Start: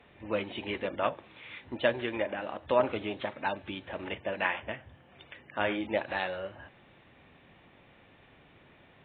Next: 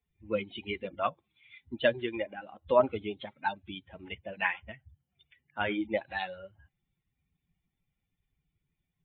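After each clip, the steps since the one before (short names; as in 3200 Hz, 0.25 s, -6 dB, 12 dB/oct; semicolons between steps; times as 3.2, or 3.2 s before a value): per-bin expansion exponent 2; gain +4 dB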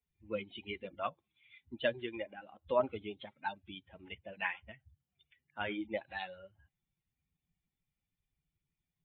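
bell 3000 Hz +2 dB; gain -7 dB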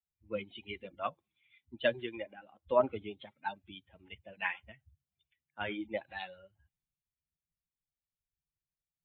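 three-band expander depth 40%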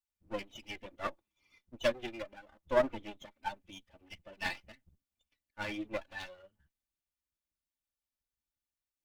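minimum comb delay 3.4 ms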